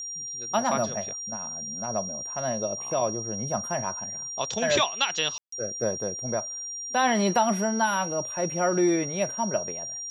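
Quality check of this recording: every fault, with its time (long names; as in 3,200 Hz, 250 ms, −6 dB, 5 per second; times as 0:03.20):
whistle 5,700 Hz −33 dBFS
0:05.38–0:05.52: drop-out 144 ms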